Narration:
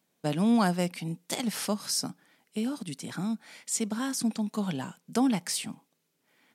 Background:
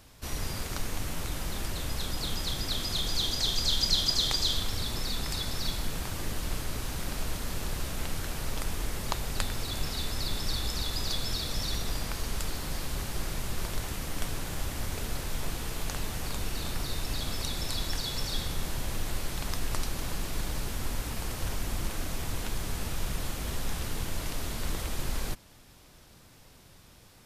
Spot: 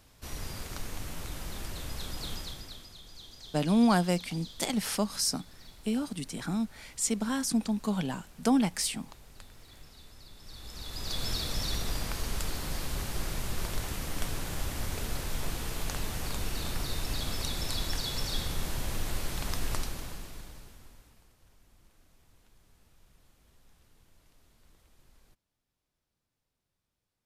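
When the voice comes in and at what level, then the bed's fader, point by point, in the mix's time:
3.30 s, +0.5 dB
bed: 2.34 s -5 dB
2.97 s -20 dB
10.36 s -20 dB
11.25 s -0.5 dB
19.73 s -0.5 dB
21.37 s -30 dB

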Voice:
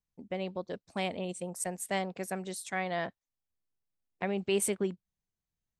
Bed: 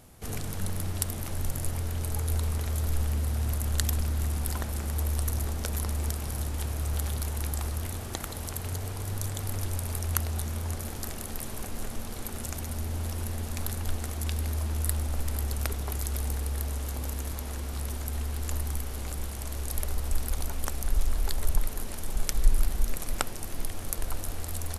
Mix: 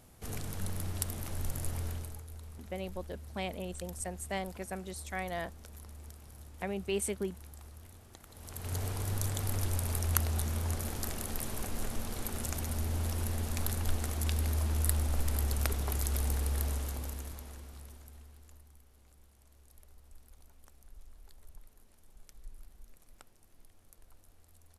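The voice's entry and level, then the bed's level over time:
2.40 s, -4.0 dB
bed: 1.90 s -5 dB
2.27 s -19 dB
8.25 s -19 dB
8.78 s -1 dB
16.69 s -1 dB
18.70 s -27.5 dB

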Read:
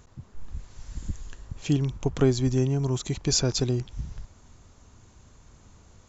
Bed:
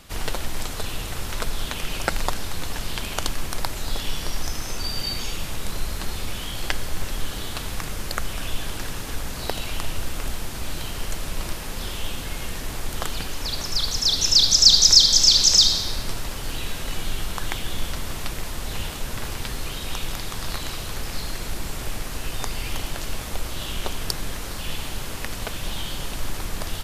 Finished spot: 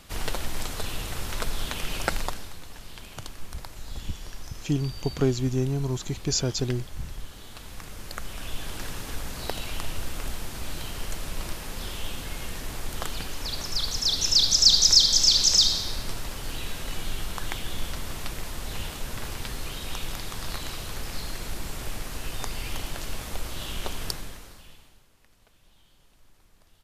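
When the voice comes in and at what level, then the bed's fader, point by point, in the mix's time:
3.00 s, -2.0 dB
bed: 2.13 s -2.5 dB
2.62 s -14 dB
7.37 s -14 dB
8.84 s -4 dB
24.08 s -4 dB
25.10 s -31 dB

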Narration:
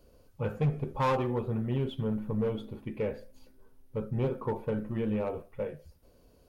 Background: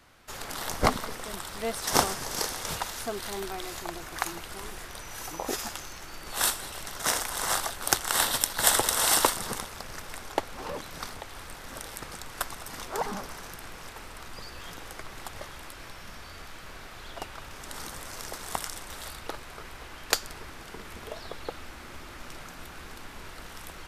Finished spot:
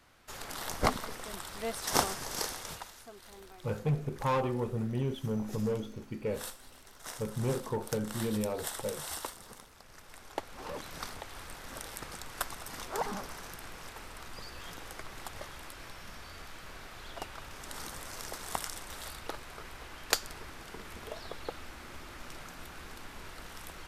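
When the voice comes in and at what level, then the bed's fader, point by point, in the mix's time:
3.25 s, -2.0 dB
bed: 2.50 s -4.5 dB
3.04 s -17 dB
9.68 s -17 dB
10.86 s -3 dB

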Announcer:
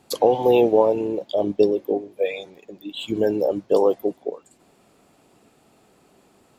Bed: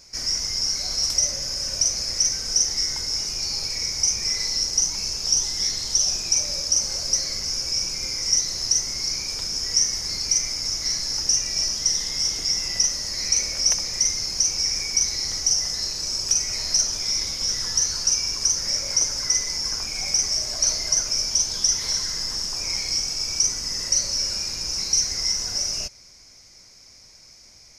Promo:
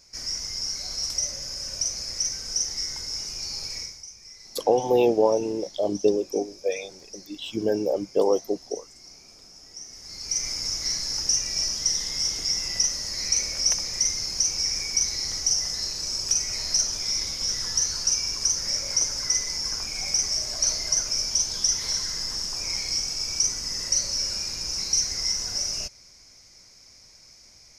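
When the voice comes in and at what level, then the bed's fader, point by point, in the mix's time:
4.45 s, -3.5 dB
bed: 3.79 s -6 dB
4.05 s -21.5 dB
9.79 s -21.5 dB
10.47 s -2.5 dB

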